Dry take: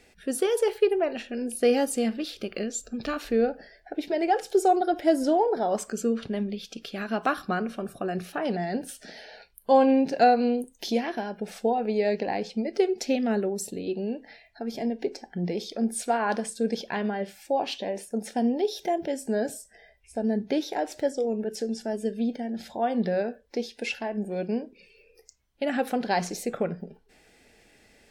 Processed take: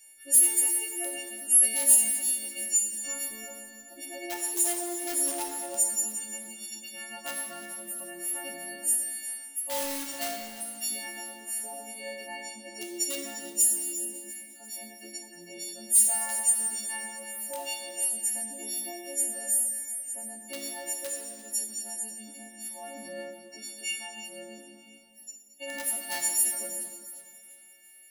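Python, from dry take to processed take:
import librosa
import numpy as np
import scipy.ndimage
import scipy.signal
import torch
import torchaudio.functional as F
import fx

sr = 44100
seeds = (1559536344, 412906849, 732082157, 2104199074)

p1 = fx.freq_snap(x, sr, grid_st=4)
p2 = p1 + 0.91 * np.pad(p1, (int(3.3 * sr / 1000.0), 0))[:len(p1)]
p3 = (np.mod(10.0 ** (11.5 / 20.0) * p2 + 1.0, 2.0) - 1.0) / 10.0 ** (11.5 / 20.0)
p4 = p2 + (p3 * librosa.db_to_amplitude(-7.0))
p5 = F.preemphasis(torch.from_numpy(p4), 0.9).numpy()
p6 = fx.echo_split(p5, sr, split_hz=2700.0, low_ms=140, high_ms=347, feedback_pct=52, wet_db=-15.0)
p7 = fx.rev_plate(p6, sr, seeds[0], rt60_s=2.3, hf_ratio=0.7, predelay_ms=0, drr_db=0.0)
y = p7 * librosa.db_to_amplitude(-7.5)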